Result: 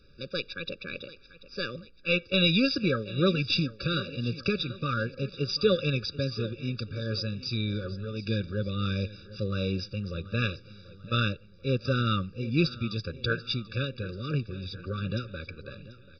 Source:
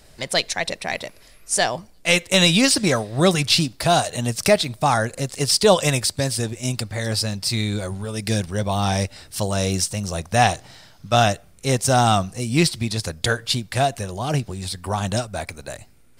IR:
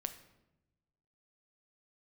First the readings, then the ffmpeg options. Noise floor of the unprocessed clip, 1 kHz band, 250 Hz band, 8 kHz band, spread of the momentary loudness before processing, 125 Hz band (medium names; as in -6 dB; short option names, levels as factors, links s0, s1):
-50 dBFS, -17.0 dB, -6.5 dB, under -30 dB, 12 LU, -6.5 dB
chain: -af "aecho=1:1:737|1474|2211|2948:0.141|0.0678|0.0325|0.0156,aresample=11025,aresample=44100,afftfilt=real='re*eq(mod(floor(b*sr/1024/570),2),0)':imag='im*eq(mod(floor(b*sr/1024/570),2),0)':win_size=1024:overlap=0.75,volume=0.473"